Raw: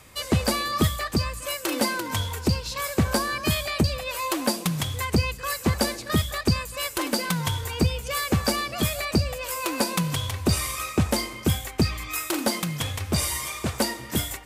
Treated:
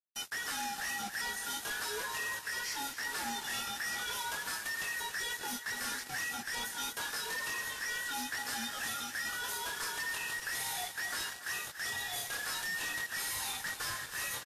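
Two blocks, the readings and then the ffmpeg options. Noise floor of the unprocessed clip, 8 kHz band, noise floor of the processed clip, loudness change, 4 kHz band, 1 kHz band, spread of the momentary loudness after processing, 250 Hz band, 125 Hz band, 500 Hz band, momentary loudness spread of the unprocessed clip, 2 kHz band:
-39 dBFS, -7.0 dB, -47 dBFS, -10.0 dB, -9.0 dB, -10.0 dB, 2 LU, -24.0 dB, -31.5 dB, -20.0 dB, 4 LU, -3.0 dB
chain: -af "afftfilt=real='real(if(between(b,1,1012),(2*floor((b-1)/92)+1)*92-b,b),0)':imag='imag(if(between(b,1,1012),(2*floor((b-1)/92)+1)*92-b,b),0)*if(between(b,1,1012),-1,1)':win_size=2048:overlap=0.75,lowshelf=f=110:g=-10,bandreject=f=7.7k:w=13,areverse,acompressor=threshold=-29dB:ratio=8,areverse,flanger=delay=20:depth=4.7:speed=0.44,aeval=exprs='0.0251*(abs(mod(val(0)/0.0251+3,4)-2)-1)':c=same,acrusher=bits=6:mix=0:aa=0.000001,aecho=1:1:283|566|849|1132:0.237|0.0949|0.0379|0.0152" -ar 44100 -c:a libvorbis -b:a 32k

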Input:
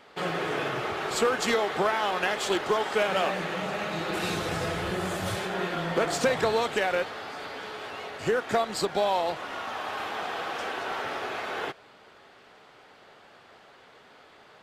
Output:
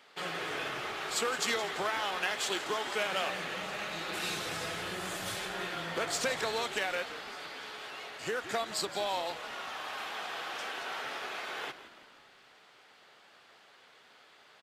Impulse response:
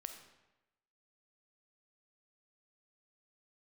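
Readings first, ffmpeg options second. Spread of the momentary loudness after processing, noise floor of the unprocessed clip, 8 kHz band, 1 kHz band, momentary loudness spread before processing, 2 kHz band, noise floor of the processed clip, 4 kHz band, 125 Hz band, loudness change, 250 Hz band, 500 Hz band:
9 LU, -54 dBFS, -0.5 dB, -7.5 dB, 9 LU, -4.0 dB, -60 dBFS, -1.5 dB, -12.0 dB, -6.0 dB, -10.5 dB, -9.5 dB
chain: -filter_complex "[0:a]highpass=110,tiltshelf=f=1.3k:g=-5.5,asplit=2[a][b];[b]asplit=5[c][d][e][f][g];[c]adelay=168,afreqshift=-63,volume=-14dB[h];[d]adelay=336,afreqshift=-126,volume=-19.7dB[i];[e]adelay=504,afreqshift=-189,volume=-25.4dB[j];[f]adelay=672,afreqshift=-252,volume=-31dB[k];[g]adelay=840,afreqshift=-315,volume=-36.7dB[l];[h][i][j][k][l]amix=inputs=5:normalize=0[m];[a][m]amix=inputs=2:normalize=0,volume=-6dB"

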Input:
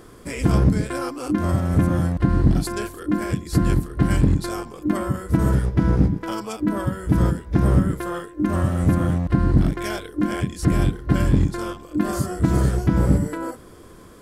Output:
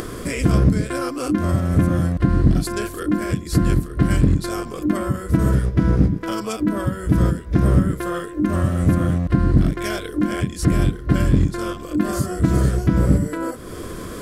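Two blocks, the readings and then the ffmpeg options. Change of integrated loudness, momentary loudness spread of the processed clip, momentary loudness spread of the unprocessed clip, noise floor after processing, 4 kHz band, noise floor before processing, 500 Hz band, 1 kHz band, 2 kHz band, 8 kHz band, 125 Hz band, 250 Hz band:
+1.5 dB, 8 LU, 9 LU, -33 dBFS, +2.5 dB, -44 dBFS, +2.0 dB, +0.5 dB, +2.0 dB, +3.0 dB, +1.5 dB, +1.5 dB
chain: -af "equalizer=f=860:t=o:w=0.23:g=-10.5,acompressor=mode=upward:threshold=-20dB:ratio=2.5,volume=1.5dB"

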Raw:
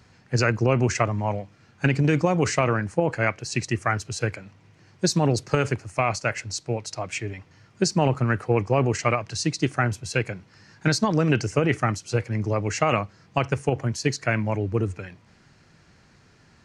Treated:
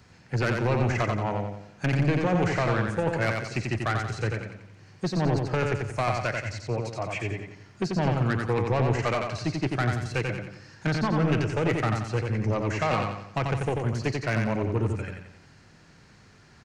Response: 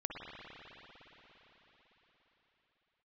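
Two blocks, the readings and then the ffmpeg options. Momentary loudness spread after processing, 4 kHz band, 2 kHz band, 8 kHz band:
9 LU, -6.0 dB, -2.5 dB, -12.5 dB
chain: -filter_complex "[0:a]acrossover=split=510|3200[a][b][c];[c]acompressor=threshold=-49dB:ratio=10[d];[a][b][d]amix=inputs=3:normalize=0,asoftclip=type=tanh:threshold=-20.5dB,aecho=1:1:89|178|267|356|445|534:0.631|0.278|0.122|0.0537|0.0236|0.0104"

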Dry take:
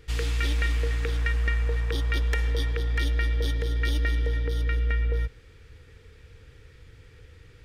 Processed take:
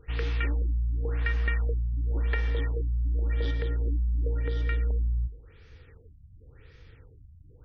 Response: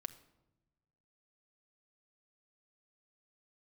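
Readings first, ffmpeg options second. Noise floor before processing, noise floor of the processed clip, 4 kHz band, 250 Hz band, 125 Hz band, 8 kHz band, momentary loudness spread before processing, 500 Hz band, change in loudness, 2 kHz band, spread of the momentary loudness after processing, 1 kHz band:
-52 dBFS, -54 dBFS, -10.0 dB, -2.5 dB, -1.5 dB, under -20 dB, 2 LU, -3.0 dB, -2.0 dB, -5.5 dB, 2 LU, -4.5 dB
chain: -filter_complex "[0:a]bandreject=f=52.61:t=h:w=4,bandreject=f=105.22:t=h:w=4,bandreject=f=157.83:t=h:w=4,bandreject=f=210.44:t=h:w=4,bandreject=f=263.05:t=h:w=4,bandreject=f=315.66:t=h:w=4,bandreject=f=368.27:t=h:w=4,bandreject=f=420.88:t=h:w=4,bandreject=f=473.49:t=h:w=4,bandreject=f=526.1:t=h:w=4,acrossover=split=3400[a][b];[b]acompressor=threshold=-54dB:ratio=4:attack=1:release=60[c];[a][c]amix=inputs=2:normalize=0,afftfilt=real='re*lt(b*sr/1024,220*pow(6700/220,0.5+0.5*sin(2*PI*0.92*pts/sr)))':imag='im*lt(b*sr/1024,220*pow(6700/220,0.5+0.5*sin(2*PI*0.92*pts/sr)))':win_size=1024:overlap=0.75,volume=-1dB"

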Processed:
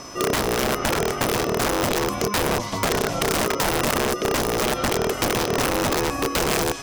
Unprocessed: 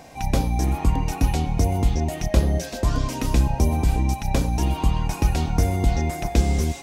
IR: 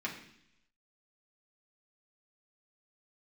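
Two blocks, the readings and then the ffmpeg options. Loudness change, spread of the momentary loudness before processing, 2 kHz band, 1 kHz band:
+1.0 dB, 3 LU, +10.5 dB, +5.0 dB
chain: -filter_complex "[0:a]acrossover=split=4300[a][b];[b]acompressor=threshold=-41dB:ratio=4:attack=1:release=60[c];[a][c]amix=inputs=2:normalize=0,aeval=exprs='(mod(7.5*val(0)+1,2)-1)/7.5':c=same,acompressor=threshold=-25dB:ratio=6,aeval=exprs='val(0)+0.00501*sin(2*PI*5600*n/s)':c=same,aeval=exprs='val(0)*sin(2*PI*420*n/s)':c=same,volume=8.5dB"

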